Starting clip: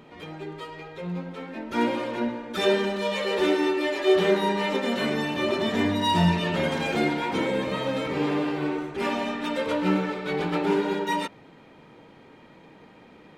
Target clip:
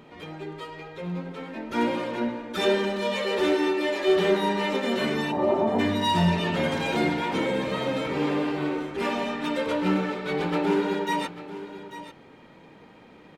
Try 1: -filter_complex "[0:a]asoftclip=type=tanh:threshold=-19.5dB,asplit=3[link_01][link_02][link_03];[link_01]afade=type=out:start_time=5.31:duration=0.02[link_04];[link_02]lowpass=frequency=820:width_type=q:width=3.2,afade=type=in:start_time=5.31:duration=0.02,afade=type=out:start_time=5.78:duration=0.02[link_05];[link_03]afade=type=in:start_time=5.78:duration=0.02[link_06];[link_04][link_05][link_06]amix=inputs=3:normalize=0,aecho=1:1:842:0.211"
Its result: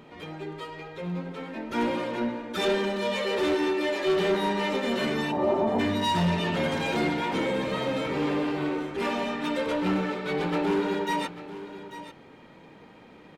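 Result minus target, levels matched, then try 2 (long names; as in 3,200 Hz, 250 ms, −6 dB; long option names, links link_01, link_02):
soft clipping: distortion +11 dB
-filter_complex "[0:a]asoftclip=type=tanh:threshold=-11.5dB,asplit=3[link_01][link_02][link_03];[link_01]afade=type=out:start_time=5.31:duration=0.02[link_04];[link_02]lowpass=frequency=820:width_type=q:width=3.2,afade=type=in:start_time=5.31:duration=0.02,afade=type=out:start_time=5.78:duration=0.02[link_05];[link_03]afade=type=in:start_time=5.78:duration=0.02[link_06];[link_04][link_05][link_06]amix=inputs=3:normalize=0,aecho=1:1:842:0.211"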